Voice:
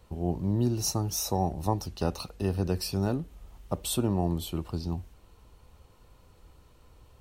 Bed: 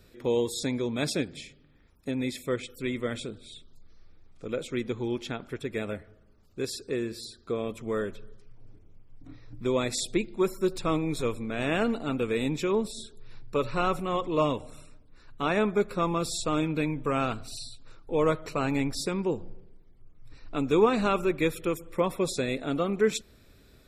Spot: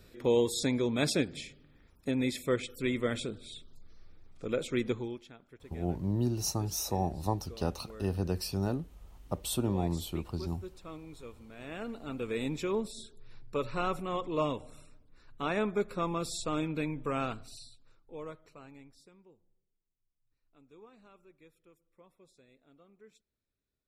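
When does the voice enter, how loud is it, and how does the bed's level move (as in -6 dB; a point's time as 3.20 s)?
5.60 s, -3.5 dB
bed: 4.92 s 0 dB
5.30 s -18.5 dB
11.49 s -18.5 dB
12.38 s -5.5 dB
17.25 s -5.5 dB
19.38 s -33.5 dB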